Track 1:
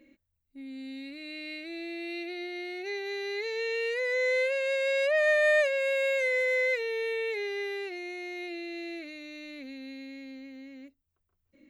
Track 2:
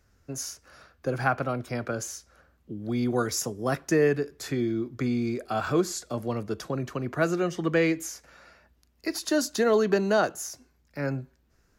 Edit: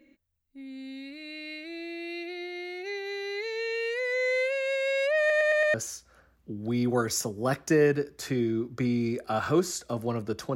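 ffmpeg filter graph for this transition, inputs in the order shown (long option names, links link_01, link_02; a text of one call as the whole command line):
ffmpeg -i cue0.wav -i cue1.wav -filter_complex "[0:a]apad=whole_dur=10.55,atrim=end=10.55,asplit=5[link_01][link_02][link_03][link_04][link_05];[link_01]atrim=end=5.302[link_06];[link_02]atrim=start=5.188:end=5.302[link_07];[link_03]atrim=start=5.188:end=5.302[link_08];[link_04]atrim=start=5.188:end=5.302[link_09];[link_05]atrim=start=5.188:end=5.302[link_10];[1:a]atrim=start=1.948:end=6.76[link_11];[link_06][link_07]acrossfade=duration=0.004:curve1=hsin:curve2=hsin[link_12];[link_12][link_08]acrossfade=duration=0.004:curve1=hsin:curve2=hsin[link_13];[link_13][link_09]acrossfade=duration=0.004:curve1=hsin:curve2=hsin[link_14];[link_14][link_10]acrossfade=duration=0.004:curve1=hsin:curve2=hsin[link_15];[link_15][link_11]acrossfade=duration=0.004:curve1=hsin:curve2=hsin" out.wav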